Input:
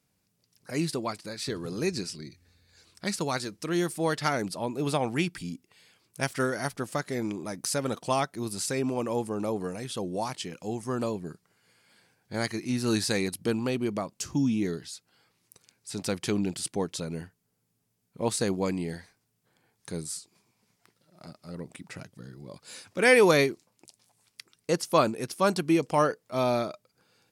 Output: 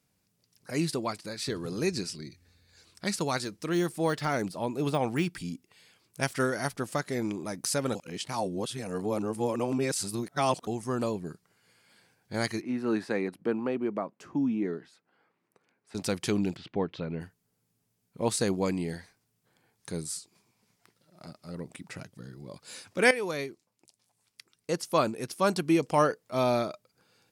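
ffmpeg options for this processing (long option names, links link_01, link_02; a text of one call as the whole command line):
ffmpeg -i in.wav -filter_complex "[0:a]asettb=1/sr,asplit=3[link_01][link_02][link_03];[link_01]atrim=end=3.444[link_04];[link_02]atrim=start=3.44:end=6.22,asetpts=PTS-STARTPTS,afade=type=in:duration=0.004:curve=qsin,afade=type=out:start_time=2.776:duration=0.004:curve=qsin,deesser=0.9[link_05];[link_03]atrim=start=6.216[link_06];[link_04][link_05]acrossfade=duration=0.004:curve1=hsin:curve2=qsin[link_07];[link_07][link_06]acrossfade=duration=0.004:curve1=qsin:curve2=hsin,asettb=1/sr,asplit=3[link_08][link_09][link_10];[link_08]atrim=end=12.614[link_11];[link_09]atrim=start=12.61:end=15.95,asetpts=PTS-STARTPTS,afade=type=in:duration=0.004:curve=qsin,afade=type=out:start_time=3.336:duration=0.004:curve=qsin,acrossover=split=180 2200:gain=0.0891 1 0.0708[link_12][link_13][link_14];[link_12][link_13][link_14]amix=inputs=3:normalize=0[link_15];[link_10]atrim=start=15.946[link_16];[link_11][link_15]acrossfade=duration=0.004:curve1=hsin:curve2=qsin[link_17];[link_17][link_16]acrossfade=duration=0.004:curve1=qsin:curve2=hsin,asplit=3[link_18][link_19][link_20];[link_18]afade=type=out:start_time=16.55:duration=0.02[link_21];[link_19]lowpass=frequency=3200:width=0.5412,lowpass=frequency=3200:width=1.3066,afade=type=in:start_time=16.55:duration=0.02,afade=type=out:start_time=17.2:duration=0.02[link_22];[link_20]afade=type=in:start_time=17.2:duration=0.02[link_23];[link_21][link_22][link_23]amix=inputs=3:normalize=0,asplit=4[link_24][link_25][link_26][link_27];[link_24]atrim=end=7.952[link_28];[link_25]atrim=start=7.948:end=10.672,asetpts=PTS-STARTPTS,areverse[link_29];[link_26]atrim=start=10.668:end=23.11,asetpts=PTS-STARTPTS,afade=type=out:start_time=12.438:duration=0.004:curve=hsin:silence=0.177828[link_30];[link_27]atrim=start=23.11,asetpts=PTS-STARTPTS,afade=type=in:duration=2.87:silence=0.177828[link_31];[link_28][link_29]acrossfade=duration=0.004:curve1=hsin:curve2=hsin[link_32];[link_30][link_31]concat=n=2:v=0:a=1[link_33];[link_32][link_33]acrossfade=duration=0.004:curve1=hsin:curve2=hsin" out.wav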